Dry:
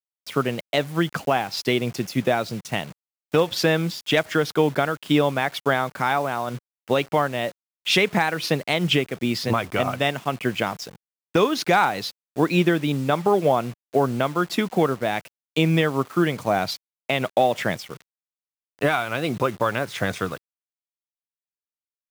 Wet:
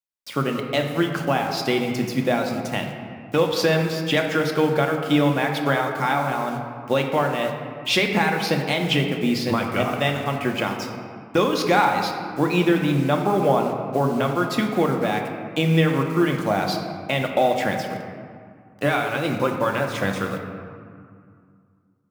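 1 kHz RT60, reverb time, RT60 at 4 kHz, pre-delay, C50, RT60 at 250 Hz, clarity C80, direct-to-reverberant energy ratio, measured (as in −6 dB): 2.3 s, 2.2 s, 1.2 s, 4 ms, 5.0 dB, 2.8 s, 6.0 dB, 2.0 dB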